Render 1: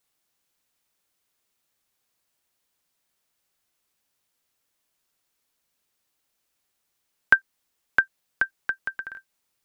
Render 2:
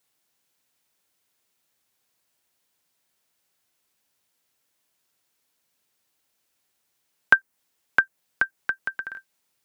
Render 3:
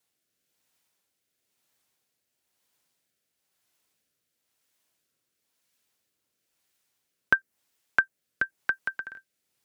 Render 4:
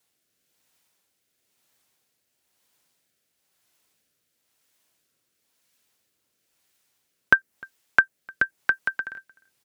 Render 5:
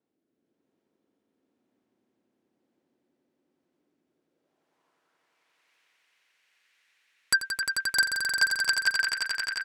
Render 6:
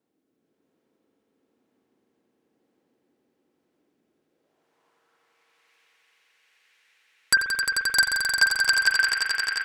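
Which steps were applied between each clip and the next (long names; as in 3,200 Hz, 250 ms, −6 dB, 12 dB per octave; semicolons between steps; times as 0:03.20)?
dynamic equaliser 3,800 Hz, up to −7 dB, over −39 dBFS, Q 0.84; high-pass filter 75 Hz; notch filter 1,200 Hz, Q 21; level +2.5 dB
rotating-speaker cabinet horn 1 Hz
slap from a distant wall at 52 metres, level −25 dB; level +5 dB
band-pass filter sweep 290 Hz → 2,100 Hz, 0:04.04–0:05.37; sine wavefolder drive 15 dB, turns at −7 dBFS; echo that builds up and dies away 88 ms, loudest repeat 5, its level −7 dB; level −9 dB
spring reverb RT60 1.2 s, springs 45 ms, chirp 70 ms, DRR 5 dB; level +4 dB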